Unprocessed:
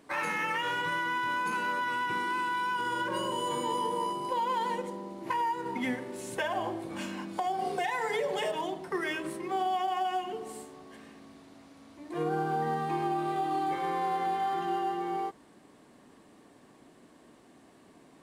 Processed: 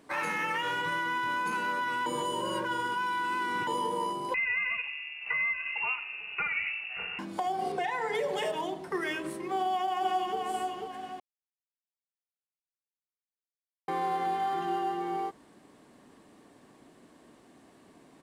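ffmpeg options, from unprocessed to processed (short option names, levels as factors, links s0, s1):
-filter_complex "[0:a]asettb=1/sr,asplit=3[s0][s1][s2];[s0]atrim=end=4.344[s3];[s1]atrim=start=4.34:end=7.19,asetpts=PTS-STARTPTS,afade=t=in:d=0.004:c=qsin,afade=t=out:st=2.846:d=0.004:c=qsin,lowpass=f=2600:t=q:w=0.5098,lowpass=f=2600:t=q:w=0.6013,lowpass=f=2600:t=q:w=0.9,lowpass=f=2600:t=q:w=2.563,afreqshift=-3000[s4];[s2]atrim=start=7.186[s5];[s3][s4]acrossfade=d=0.004:c1=hsin:c2=qsin[s6];[s6][s5]acrossfade=d=0.004:c1=qsin:c2=hsin,asettb=1/sr,asplit=3[s7][s8][s9];[s7]atrim=end=7.724[s10];[s8]atrim=start=7.72:end=8.15,asetpts=PTS-STARTPTS,afade=t=in:d=0.004:c=qsin,afade=t=out:st=0.426:d=0.004:c=qsin,lowpass=f=3500:p=1[s11];[s9]atrim=start=8.146[s12];[s10][s11]acrossfade=d=0.004:c1=hsin:c2=qsin[s13];[s13][s12]acrossfade=d=0.004:c1=qsin:c2=hsin,asplit=2[s14][s15];[s15]afade=t=in:st=9.53:d=0.01,afade=t=out:st=10.38:d=0.01,aecho=0:1:490|980|1470|1960|2450:0.707946|0.283178|0.113271|0.0453085|0.0181234[s16];[s14][s16]amix=inputs=2:normalize=0,asplit=5[s17][s18][s19][s20][s21];[s17]atrim=end=2.062[s22];[s18]atrim=start=2.058:end=3.672,asetpts=PTS-STARTPTS,areverse[s23];[s19]atrim=start=3.668:end=11.2,asetpts=PTS-STARTPTS,afade=t=out:st=7.528:d=0.004:c=hsin[s24];[s20]atrim=start=11.2:end=13.88,asetpts=PTS-STARTPTS,volume=0[s25];[s21]atrim=start=13.88,asetpts=PTS-STARTPTS,afade=t=in:d=0.004:c=hsin[s26];[s22][s23]acrossfade=d=0.004:c1=hsin:c2=hsin[s27];[s24][s25][s26]concat=n=3:v=0:a=1[s28];[s27][s28]acrossfade=d=0.004:c1=hsin:c2=hsin"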